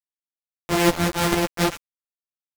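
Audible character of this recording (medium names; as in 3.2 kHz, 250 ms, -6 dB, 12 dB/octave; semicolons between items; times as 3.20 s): a buzz of ramps at a fixed pitch in blocks of 256 samples; tremolo saw up 1.5 Hz, depth 85%; a quantiser's noise floor 6-bit, dither none; a shimmering, thickened sound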